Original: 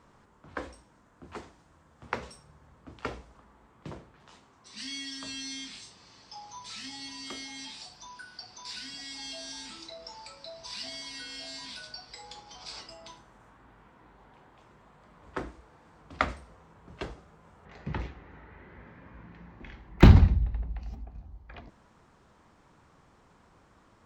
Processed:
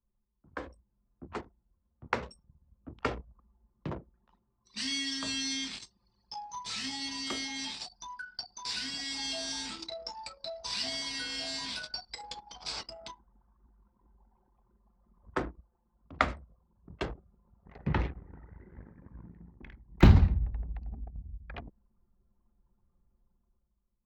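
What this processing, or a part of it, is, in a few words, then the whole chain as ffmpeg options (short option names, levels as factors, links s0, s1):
voice memo with heavy noise removal: -af "anlmdn=0.0398,dynaudnorm=f=130:g=13:m=3.55,volume=0.501"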